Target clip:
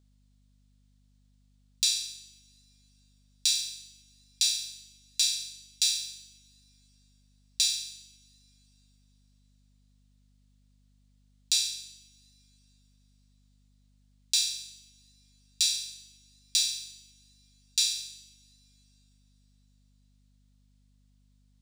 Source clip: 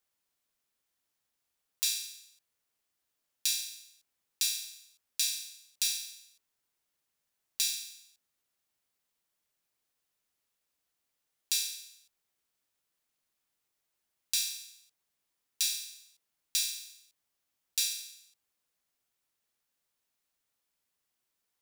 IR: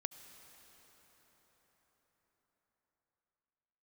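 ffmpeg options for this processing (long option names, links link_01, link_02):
-filter_complex "[0:a]aeval=exprs='val(0)+0.001*(sin(2*PI*50*n/s)+sin(2*PI*2*50*n/s)/2+sin(2*PI*3*50*n/s)/3+sin(2*PI*4*50*n/s)/4+sin(2*PI*5*50*n/s)/5)':channel_layout=same,equalizer=frequency=500:width_type=o:width=1:gain=6,equalizer=frequency=4000:width_type=o:width=1:gain=10,equalizer=frequency=8000:width_type=o:width=1:gain=10,equalizer=frequency=16000:width_type=o:width=1:gain=-11,asplit=2[link_01][link_02];[1:a]atrim=start_sample=2205[link_03];[link_02][link_03]afir=irnorm=-1:irlink=0,volume=-11.5dB[link_04];[link_01][link_04]amix=inputs=2:normalize=0,volume=-5dB"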